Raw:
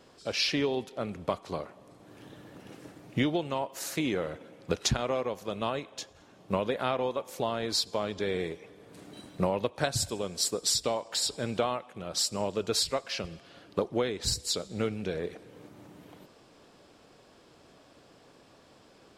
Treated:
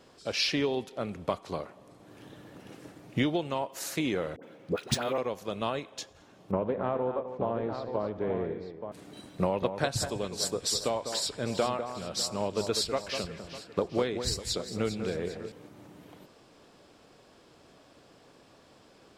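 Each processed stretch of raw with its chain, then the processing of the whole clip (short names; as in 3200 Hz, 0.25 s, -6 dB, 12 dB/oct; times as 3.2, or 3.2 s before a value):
4.36–5.18 HPF 120 Hz + dispersion highs, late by 69 ms, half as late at 840 Hz + decimation joined by straight lines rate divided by 3×
6.51–8.92 LPF 1100 Hz + tapped delay 79/150/264/878 ms -15/-17.5/-10.5/-8 dB + Doppler distortion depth 0.22 ms
9.42–15.52 high shelf 4800 Hz -4.5 dB + echo with dull and thin repeats by turns 0.2 s, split 2000 Hz, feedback 66%, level -8 dB
whole clip: dry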